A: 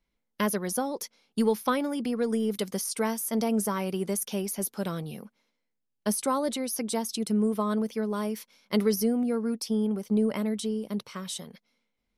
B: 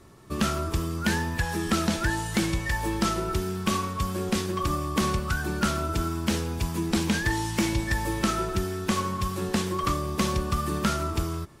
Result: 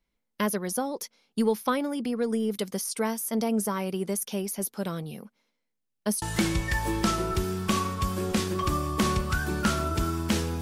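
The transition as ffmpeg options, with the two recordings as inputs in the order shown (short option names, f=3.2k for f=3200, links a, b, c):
-filter_complex "[0:a]apad=whole_dur=10.61,atrim=end=10.61,atrim=end=6.222[a];[1:a]atrim=start=2.198:end=6.59[b];[a][b]acrossfade=d=0.004:c1=hsin:c2=hsin"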